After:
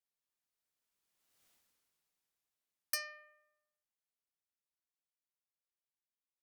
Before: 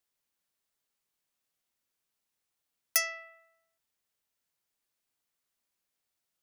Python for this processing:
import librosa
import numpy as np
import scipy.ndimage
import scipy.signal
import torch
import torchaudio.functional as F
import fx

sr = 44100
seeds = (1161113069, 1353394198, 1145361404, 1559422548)

y = fx.doppler_pass(x, sr, speed_mps=32, closest_m=3.8, pass_at_s=1.47)
y = F.gain(torch.from_numpy(y), 11.5).numpy()